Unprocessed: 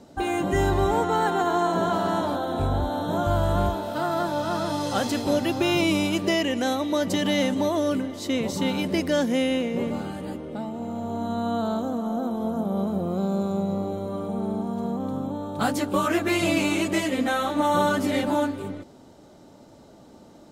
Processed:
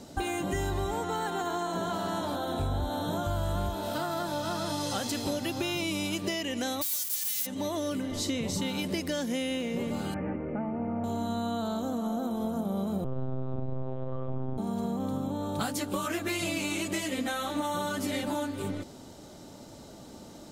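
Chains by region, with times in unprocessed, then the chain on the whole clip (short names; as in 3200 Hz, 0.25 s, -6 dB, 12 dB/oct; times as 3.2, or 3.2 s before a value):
6.81–7.45 spectral whitening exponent 0.1 + pre-emphasis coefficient 0.8
8.11–8.61 LPF 12000 Hz + low shelf 160 Hz +9.5 dB + flutter echo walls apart 8.2 m, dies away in 0.24 s
10.14–11.04 steep low-pass 2500 Hz 72 dB/oct + notch 1000 Hz, Q 19
13.04–14.58 air absorption 470 m + monotone LPC vocoder at 8 kHz 130 Hz
whole clip: high shelf 2600 Hz +10 dB; compressor, threshold -30 dBFS; low shelf 180 Hz +5 dB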